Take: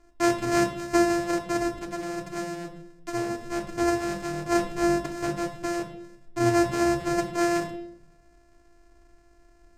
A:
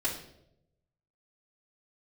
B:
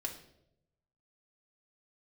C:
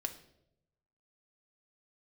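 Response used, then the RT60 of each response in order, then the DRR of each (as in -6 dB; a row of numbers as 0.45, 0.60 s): B; 0.80, 0.80, 0.80 s; -10.0, -1.0, 3.5 dB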